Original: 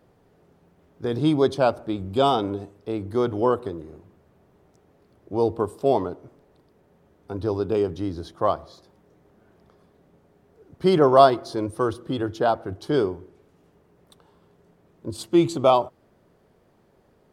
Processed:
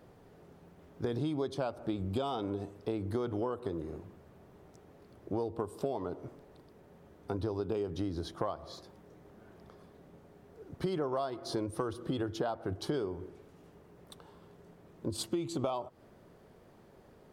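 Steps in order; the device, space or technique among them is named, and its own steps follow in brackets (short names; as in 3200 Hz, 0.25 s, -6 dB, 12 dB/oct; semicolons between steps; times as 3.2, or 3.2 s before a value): serial compression, peaks first (compressor 10:1, threshold -26 dBFS, peak gain reduction 18 dB; compressor 2:1, threshold -37 dBFS, peak gain reduction 7.5 dB); gain +2 dB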